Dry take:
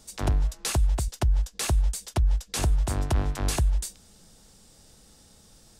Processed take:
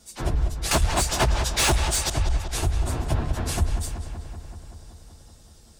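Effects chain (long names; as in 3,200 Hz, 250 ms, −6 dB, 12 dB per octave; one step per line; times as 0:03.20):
random phases in long frames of 50 ms
0:00.71–0:02.10: mid-hump overdrive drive 27 dB, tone 4,700 Hz, clips at −10.5 dBFS
feedback echo with a low-pass in the loop 190 ms, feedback 74%, low-pass 4,400 Hz, level −9 dB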